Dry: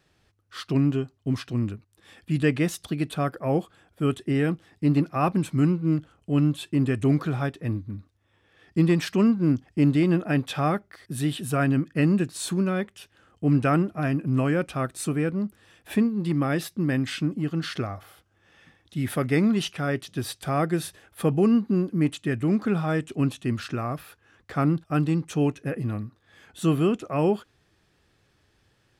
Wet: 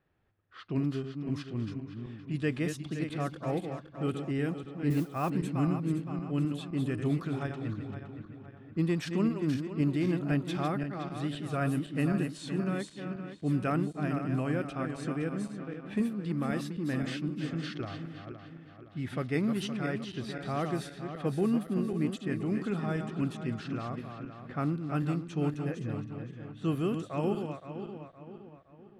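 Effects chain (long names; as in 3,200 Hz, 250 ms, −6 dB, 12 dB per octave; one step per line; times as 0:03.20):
feedback delay that plays each chunk backwards 258 ms, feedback 66%, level −7 dB
low-pass that shuts in the quiet parts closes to 1,900 Hz, open at −17.5 dBFS
0:04.90–0:05.30: noise that follows the level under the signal 24 dB
level −8.5 dB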